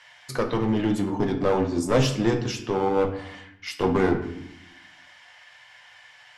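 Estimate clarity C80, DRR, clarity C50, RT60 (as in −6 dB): 12.5 dB, 3.0 dB, 10.0 dB, 0.80 s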